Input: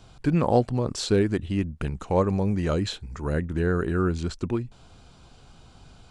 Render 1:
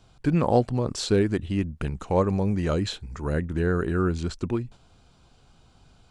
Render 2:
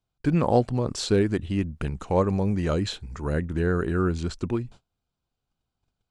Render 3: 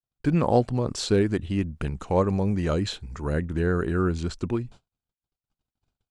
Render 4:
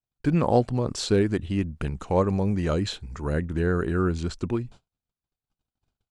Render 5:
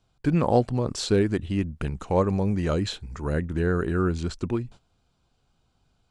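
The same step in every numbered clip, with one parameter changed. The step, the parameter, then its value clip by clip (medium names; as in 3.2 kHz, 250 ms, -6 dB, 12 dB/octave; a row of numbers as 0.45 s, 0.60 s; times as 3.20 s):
gate, range: -6 dB, -32 dB, -60 dB, -46 dB, -18 dB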